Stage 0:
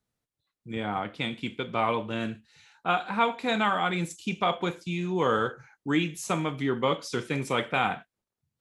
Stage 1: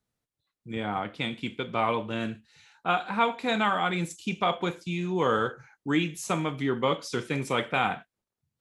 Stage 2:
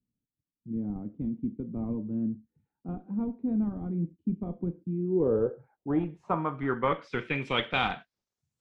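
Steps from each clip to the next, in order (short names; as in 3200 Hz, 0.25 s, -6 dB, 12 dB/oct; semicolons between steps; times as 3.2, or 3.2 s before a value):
nothing audible
in parallel at -10 dB: Schmitt trigger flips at -21 dBFS; on the sum: low-pass sweep 250 Hz -> 7700 Hz, 4.76–8.55; gain -3.5 dB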